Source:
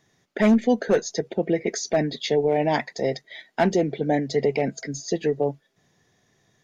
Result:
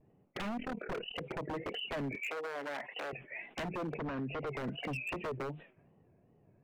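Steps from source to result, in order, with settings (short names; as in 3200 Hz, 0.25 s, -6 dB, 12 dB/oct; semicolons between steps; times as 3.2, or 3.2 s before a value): nonlinear frequency compression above 2100 Hz 4:1; 0.57–1.22 AM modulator 37 Hz, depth 65%; compressor 20:1, threshold -30 dBFS, peak gain reduction 17 dB; wow and flutter 140 cents; low-pass opened by the level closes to 610 Hz, open at -34.5 dBFS; high shelf 2000 Hz -10.5 dB; wavefolder -33.5 dBFS; 2.15–3.13 HPF 460 Hz 12 dB/oct; 3.96–4.47 air absorption 190 m; sustainer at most 130 dB/s; gain +1.5 dB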